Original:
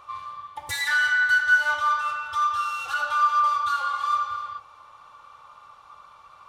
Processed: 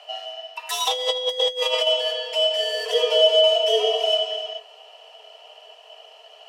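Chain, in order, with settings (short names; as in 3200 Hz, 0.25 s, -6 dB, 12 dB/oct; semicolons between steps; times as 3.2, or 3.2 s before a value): in parallel at -4.5 dB: overloaded stage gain 16.5 dB; on the sum: ring modulator 1400 Hz; 2.73–4.09 low shelf 220 Hz +7 dB; frequency shift +420 Hz; 0.87–1.87 negative-ratio compressor -24 dBFS, ratio -0.5; gain +1.5 dB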